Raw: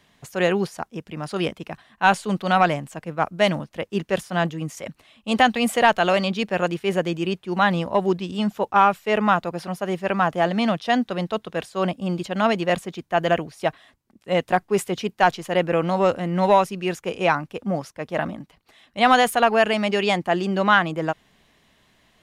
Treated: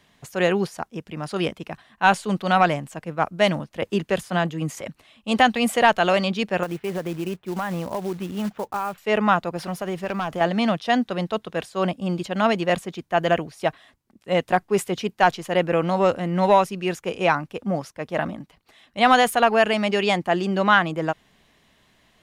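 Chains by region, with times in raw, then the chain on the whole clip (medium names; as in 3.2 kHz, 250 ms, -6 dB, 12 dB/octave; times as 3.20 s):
3.82–4.81 s: band-stop 5.6 kHz, Q 16 + three bands compressed up and down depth 70%
6.63–8.98 s: low-pass 2.2 kHz + compression 5:1, threshold -23 dBFS + short-mantissa float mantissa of 2-bit
9.56–10.41 s: companding laws mixed up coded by mu + hard clipper -13.5 dBFS + compression 4:1, threshold -23 dBFS
whole clip: none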